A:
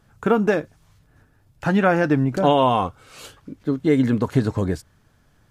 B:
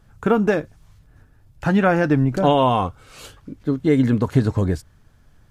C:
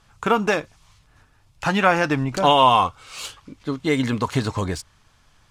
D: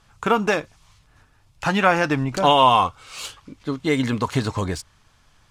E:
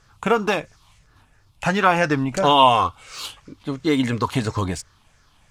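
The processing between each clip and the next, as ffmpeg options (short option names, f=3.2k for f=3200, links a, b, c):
-af "lowshelf=f=79:g=11.5"
-af "aexciter=amount=4.3:drive=6.7:freq=2.2k,equalizer=f=1.1k:t=o:w=1.4:g=13.5,adynamicsmooth=sensitivity=2:basefreq=7.7k,volume=-6.5dB"
-af anull
-af "afftfilt=real='re*pow(10,7/40*sin(2*PI*(0.54*log(max(b,1)*sr/1024/100)/log(2)-(-2.9)*(pts-256)/sr)))':imag='im*pow(10,7/40*sin(2*PI*(0.54*log(max(b,1)*sr/1024/100)/log(2)-(-2.9)*(pts-256)/sr)))':win_size=1024:overlap=0.75"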